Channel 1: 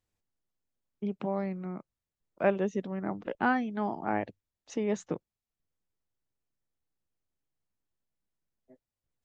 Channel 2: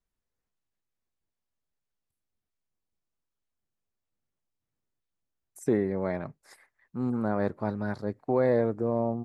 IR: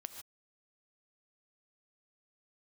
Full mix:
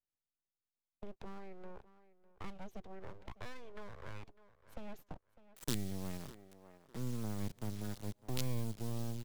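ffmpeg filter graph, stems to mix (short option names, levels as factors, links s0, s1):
-filter_complex "[0:a]agate=range=0.316:threshold=0.00631:ratio=16:detection=peak,acompressor=threshold=0.00891:ratio=2,aeval=exprs='abs(val(0))':c=same,volume=0.596,asplit=2[s0][s1];[s1]volume=0.1[s2];[1:a]acrusher=bits=4:dc=4:mix=0:aa=0.000001,volume=0.596,asplit=3[s3][s4][s5];[s4]volume=0.119[s6];[s5]volume=0.0708[s7];[2:a]atrim=start_sample=2205[s8];[s6][s8]afir=irnorm=-1:irlink=0[s9];[s2][s7]amix=inputs=2:normalize=0,aecho=0:1:602|1204|1806:1|0.17|0.0289[s10];[s0][s3][s9][s10]amix=inputs=4:normalize=0,acrossover=split=210|3000[s11][s12][s13];[s12]acompressor=threshold=0.00398:ratio=6[s14];[s11][s14][s13]amix=inputs=3:normalize=0"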